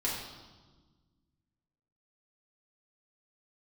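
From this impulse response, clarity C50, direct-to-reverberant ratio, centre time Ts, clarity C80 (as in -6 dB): 2.0 dB, -6.0 dB, 60 ms, 4.5 dB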